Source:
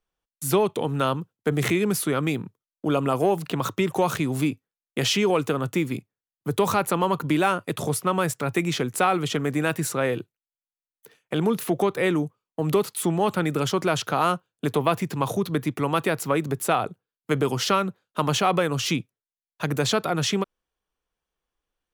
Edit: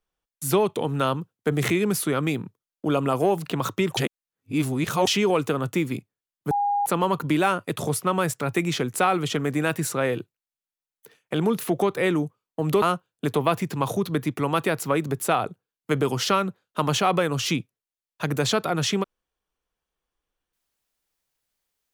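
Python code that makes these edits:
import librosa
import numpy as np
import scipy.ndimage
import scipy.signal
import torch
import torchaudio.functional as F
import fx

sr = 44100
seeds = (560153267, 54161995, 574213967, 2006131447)

y = fx.edit(x, sr, fx.reverse_span(start_s=3.97, length_s=1.1),
    fx.bleep(start_s=6.51, length_s=0.35, hz=814.0, db=-20.0),
    fx.cut(start_s=12.82, length_s=1.4), tone=tone)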